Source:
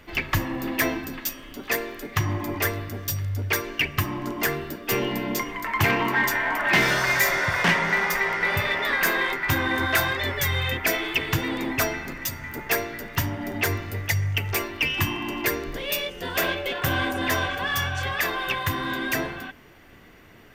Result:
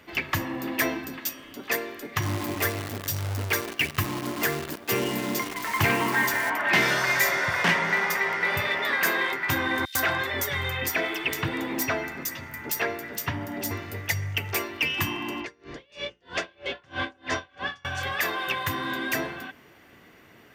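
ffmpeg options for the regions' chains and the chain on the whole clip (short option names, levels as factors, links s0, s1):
-filter_complex "[0:a]asettb=1/sr,asplit=3[s0][s1][s2];[s0]atrim=end=2.224[s3];[s1]atrim=start=2.22:end=6.5,asetpts=PTS-STARTPTS,afade=t=in:d=0.004:c=qsin,afade=t=out:st=4.276:d=0.004:c=qsin,lowshelf=f=150:g=5.5,acrusher=bits=6:dc=4:mix=0:aa=0.000001[s4];[s2]atrim=start=6.496[s5];[s3][s4]acrossfade=d=0.004:c1=hsin:c2=qsin[s6];[s6][s5]acrossfade=d=0.004:c1=qsin:c2=hsin,asettb=1/sr,asplit=3[s7][s8][s9];[s7]atrim=end=9.854[s10];[s8]atrim=start=9.85:end=13.71,asetpts=PTS-STARTPTS,afade=t=in:d=0.004:c=qsin,afade=t=out:st=3.856:d=0.004:c=qsin,aeval=exprs='(mod(3.55*val(0)+1,2)-1)/3.55':c=same,acrossover=split=3700[s11][s12];[s11]adelay=100[s13];[s13][s12]amix=inputs=2:normalize=0,atrim=end_sample=170226[s14];[s9]atrim=start=13.706[s15];[s10][s14]acrossfade=d=0.004:c1=hsin:c2=qsin[s16];[s16][s15]acrossfade=d=0.004:c1=qsin:c2=hsin,asettb=1/sr,asplit=3[s17][s18][s19];[s17]atrim=end=15.404[s20];[s18]atrim=start=15.4:end=17.85,asetpts=PTS-STARTPTS,afade=t=in:d=0.004:c=qsin,afade=t=out:st=2.446:d=0.004:c=qsin,lowpass=f=6500:w=0.5412,lowpass=f=6500:w=1.3066,aeval=exprs='val(0)+0.00891*(sin(2*PI*60*n/s)+sin(2*PI*2*60*n/s)/2+sin(2*PI*3*60*n/s)/3+sin(2*PI*4*60*n/s)/4+sin(2*PI*5*60*n/s)/5)':c=same,aeval=exprs='val(0)*pow(10,-32*(0.5-0.5*cos(2*PI*3.1*n/s))/20)':c=same[s21];[s19]atrim=start=17.846[s22];[s20][s21]acrossfade=d=0.004:c1=hsin:c2=qsin[s23];[s23][s22]acrossfade=d=0.004:c1=qsin:c2=hsin,highpass=62,lowshelf=f=100:g=-8,volume=0.841"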